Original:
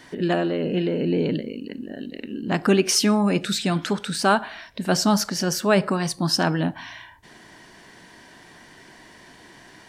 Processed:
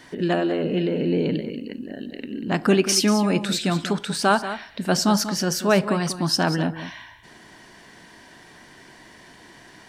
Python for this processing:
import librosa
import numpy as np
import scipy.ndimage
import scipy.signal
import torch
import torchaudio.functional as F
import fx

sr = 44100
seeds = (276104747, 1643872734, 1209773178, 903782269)

y = x + 10.0 ** (-12.0 / 20.0) * np.pad(x, (int(189 * sr / 1000.0), 0))[:len(x)]